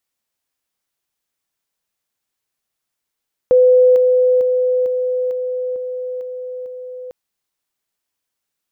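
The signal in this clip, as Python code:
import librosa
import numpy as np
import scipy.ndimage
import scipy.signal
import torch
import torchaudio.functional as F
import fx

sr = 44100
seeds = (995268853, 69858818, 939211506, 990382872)

y = fx.level_ladder(sr, hz=504.0, from_db=-7.0, step_db=-3.0, steps=8, dwell_s=0.45, gap_s=0.0)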